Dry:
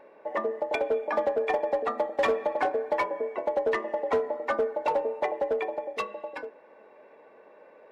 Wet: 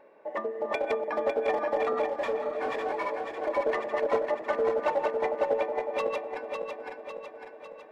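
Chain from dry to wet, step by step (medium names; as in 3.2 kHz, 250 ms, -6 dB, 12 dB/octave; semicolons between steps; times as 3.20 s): backward echo that repeats 276 ms, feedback 73%, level -2.5 dB; 2.08–3.41 s: detune thickener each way 37 cents -> 22 cents; trim -3.5 dB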